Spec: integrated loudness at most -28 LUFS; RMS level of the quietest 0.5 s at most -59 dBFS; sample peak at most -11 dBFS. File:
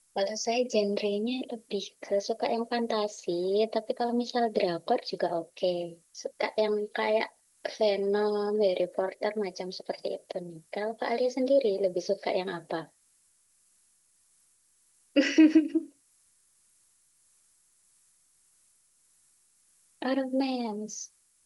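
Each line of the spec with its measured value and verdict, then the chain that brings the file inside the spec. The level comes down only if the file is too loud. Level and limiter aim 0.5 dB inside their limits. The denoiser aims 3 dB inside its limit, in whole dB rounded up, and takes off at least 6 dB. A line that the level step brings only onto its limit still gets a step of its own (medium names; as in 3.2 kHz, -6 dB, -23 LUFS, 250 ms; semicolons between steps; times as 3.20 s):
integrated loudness -29.5 LUFS: pass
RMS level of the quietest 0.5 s -67 dBFS: pass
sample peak -10.0 dBFS: fail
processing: peak limiter -11.5 dBFS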